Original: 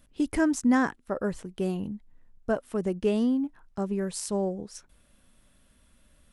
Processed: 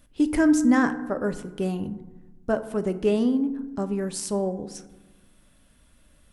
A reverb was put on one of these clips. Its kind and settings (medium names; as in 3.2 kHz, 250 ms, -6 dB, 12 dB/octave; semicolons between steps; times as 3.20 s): FDN reverb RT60 1.1 s, low-frequency decay 1.45×, high-frequency decay 0.4×, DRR 9.5 dB; trim +2.5 dB